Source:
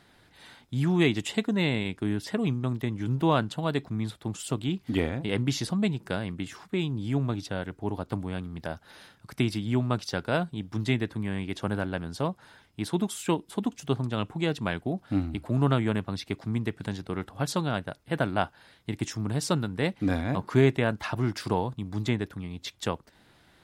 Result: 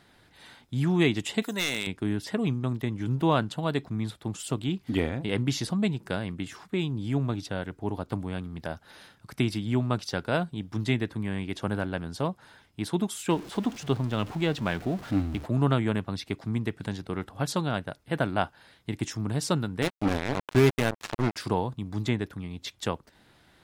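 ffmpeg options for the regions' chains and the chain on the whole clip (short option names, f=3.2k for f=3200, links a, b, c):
-filter_complex "[0:a]asettb=1/sr,asplit=3[a][b][c];[a]atrim=end=1.424[d];[b]atrim=start=1.42:end=1.87,asetpts=PTS-STARTPTS,afade=t=in:d=0.004:c=qsin,afade=t=out:st=0.446:d=0.004:c=qsin,aemphasis=mode=production:type=riaa,acompressor=mode=upward:threshold=-37dB:ratio=2.5:attack=3.2:release=140:knee=2.83:detection=peak,aeval=exprs='0.119*(abs(mod(val(0)/0.119+3,4)-2)-1)':c=same[e];[c]atrim=start=1.866[f];[d][e]acrossfade=d=0.004:c1=hsin:c2=qsin[g];[g][f]acrossfade=d=0.004:c1=qsin:c2=hsin,asettb=1/sr,asplit=3[h][i][j];[h]atrim=end=13.304[k];[i]atrim=start=13.3:end=15.46,asetpts=PTS-STARTPTS,afade=t=in:d=0.004:c=qsin,afade=t=out:st=2.156:d=0.004:c=qsin,aeval=exprs='val(0)+0.5*0.0133*sgn(val(0))':c=same,acrossover=split=6700[l][m];[m]acompressor=threshold=-55dB:ratio=4:attack=1:release=60[n];[l][n]amix=inputs=2:normalize=0[o];[j]atrim=start=15.456[p];[k][o]acrossfade=d=0.004:c1=hsin:c2=qsin[q];[q][p]acrossfade=d=0.004:c1=qsin:c2=hsin,asettb=1/sr,asplit=3[r][s][t];[r]atrim=end=19.824[u];[s]atrim=start=19.82:end=21.36,asetpts=PTS-STARTPTS,afade=t=in:d=0.004:c=qsin,afade=t=out:st=1.536:d=0.004:c=qsin,bandreject=f=49.1:t=h:w=4,bandreject=f=98.2:t=h:w=4,bandreject=f=147.3:t=h:w=4,acompressor=mode=upward:threshold=-26dB:ratio=2.5:attack=3.2:release=140:knee=2.83:detection=peak,acrusher=bits=3:mix=0:aa=0.5[v];[t]atrim=start=21.356[w];[u][v]acrossfade=d=0.004:c1=hsin:c2=qsin[x];[x][w]acrossfade=d=0.004:c1=qsin:c2=hsin"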